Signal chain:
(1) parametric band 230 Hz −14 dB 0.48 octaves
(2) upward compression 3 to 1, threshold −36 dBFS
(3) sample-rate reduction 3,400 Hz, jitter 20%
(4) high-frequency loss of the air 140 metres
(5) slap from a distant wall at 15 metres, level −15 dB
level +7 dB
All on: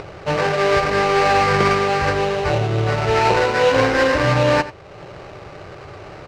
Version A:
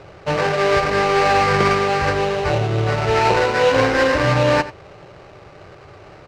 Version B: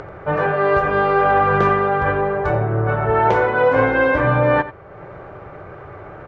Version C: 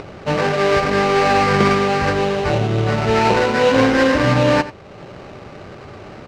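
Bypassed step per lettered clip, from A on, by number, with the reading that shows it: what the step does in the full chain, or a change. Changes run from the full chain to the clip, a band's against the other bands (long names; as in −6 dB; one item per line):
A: 2, change in momentary loudness spread −15 LU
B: 3, 4 kHz band −14.5 dB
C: 1, 250 Hz band +5.5 dB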